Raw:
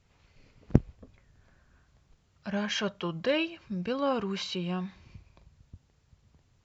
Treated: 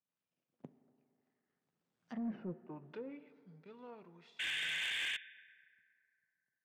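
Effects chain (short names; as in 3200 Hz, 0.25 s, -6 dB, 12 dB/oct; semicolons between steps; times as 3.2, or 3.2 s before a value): half-wave gain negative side -7 dB; Doppler pass-by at 2.32, 49 m/s, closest 2.9 m; HPF 160 Hz 24 dB/oct; treble ducked by the level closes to 350 Hz, closed at -43.5 dBFS; painted sound noise, 4.39–5.17, 1500–3700 Hz -39 dBFS; high shelf 4500 Hz -8 dB; reverb RT60 2.8 s, pre-delay 4 ms, DRR 15 dB; soft clip -39 dBFS, distortion -13 dB; gain +6 dB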